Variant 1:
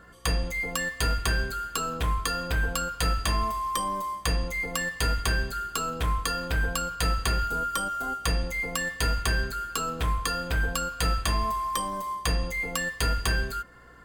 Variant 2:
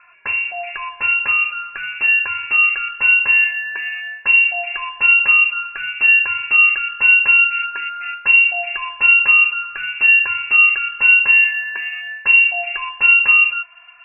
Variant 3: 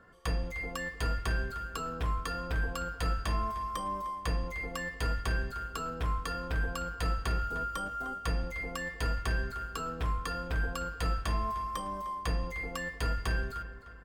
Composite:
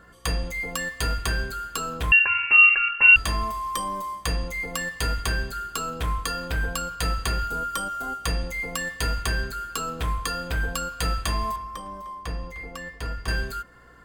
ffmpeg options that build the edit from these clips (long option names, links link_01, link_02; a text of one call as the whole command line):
ffmpeg -i take0.wav -i take1.wav -i take2.wav -filter_complex "[0:a]asplit=3[link_01][link_02][link_03];[link_01]atrim=end=2.122[link_04];[1:a]atrim=start=2.118:end=3.162[link_05];[link_02]atrim=start=3.158:end=11.562[link_06];[2:a]atrim=start=11.558:end=13.282[link_07];[link_03]atrim=start=13.278[link_08];[link_04][link_05]acrossfade=duration=0.004:curve1=hsin:curve2=hsin[link_09];[link_09][link_06]acrossfade=duration=0.004:curve1=hsin:curve2=hsin[link_10];[link_10][link_07]acrossfade=duration=0.004:curve1=hsin:curve2=hsin[link_11];[link_11][link_08]acrossfade=duration=0.004:curve1=hsin:curve2=hsin" out.wav